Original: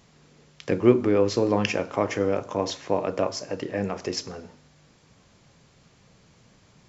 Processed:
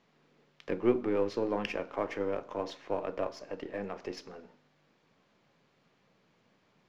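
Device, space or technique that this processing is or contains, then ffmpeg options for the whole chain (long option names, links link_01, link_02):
crystal radio: -af "highpass=210,lowpass=3400,aeval=exprs='if(lt(val(0),0),0.708*val(0),val(0))':channel_layout=same,volume=-7dB"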